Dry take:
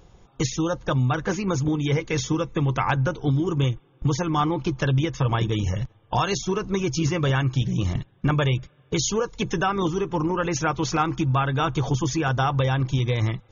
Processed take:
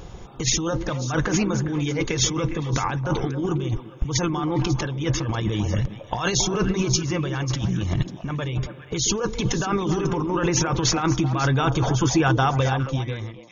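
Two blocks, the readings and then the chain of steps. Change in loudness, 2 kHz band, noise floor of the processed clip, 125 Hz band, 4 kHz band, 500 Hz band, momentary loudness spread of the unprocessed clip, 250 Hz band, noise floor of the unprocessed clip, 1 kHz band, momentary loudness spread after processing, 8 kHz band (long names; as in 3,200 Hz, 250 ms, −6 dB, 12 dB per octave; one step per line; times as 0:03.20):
+0.5 dB, +0.5 dB, −41 dBFS, −0.5 dB, +4.0 dB, 0.0 dB, 4 LU, +1.0 dB, −57 dBFS, −1.0 dB, 7 LU, can't be measured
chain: fade-out on the ending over 3.28 s
compressor whose output falls as the input rises −30 dBFS, ratio −1
echo through a band-pass that steps 136 ms, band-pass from 280 Hz, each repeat 1.4 octaves, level −4 dB
level +6.5 dB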